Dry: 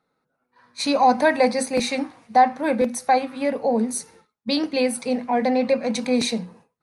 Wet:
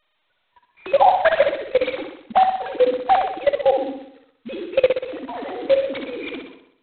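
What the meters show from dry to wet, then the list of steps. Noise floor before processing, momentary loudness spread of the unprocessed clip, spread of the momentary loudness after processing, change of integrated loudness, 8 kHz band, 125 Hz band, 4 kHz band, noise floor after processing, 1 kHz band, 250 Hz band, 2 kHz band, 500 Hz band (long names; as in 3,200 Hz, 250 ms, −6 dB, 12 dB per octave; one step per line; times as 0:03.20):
−77 dBFS, 9 LU, 15 LU, +1.5 dB, below −40 dB, can't be measured, −5.0 dB, −70 dBFS, +1.5 dB, −11.0 dB, 0.0 dB, +3.5 dB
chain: three sine waves on the formant tracks
output level in coarse steps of 19 dB
flutter between parallel walls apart 10.7 metres, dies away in 0.71 s
level +6.5 dB
G.726 16 kbit/s 8,000 Hz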